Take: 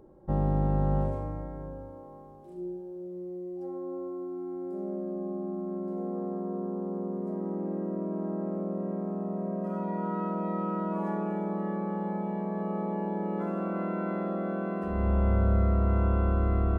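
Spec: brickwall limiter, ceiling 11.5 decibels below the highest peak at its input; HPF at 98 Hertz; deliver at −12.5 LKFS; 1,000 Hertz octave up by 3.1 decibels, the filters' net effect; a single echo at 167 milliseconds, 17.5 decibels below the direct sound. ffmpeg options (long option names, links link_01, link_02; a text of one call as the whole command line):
ffmpeg -i in.wav -af "highpass=98,equalizer=frequency=1000:width_type=o:gain=4,alimiter=level_in=4dB:limit=-24dB:level=0:latency=1,volume=-4dB,aecho=1:1:167:0.133,volume=24dB" out.wav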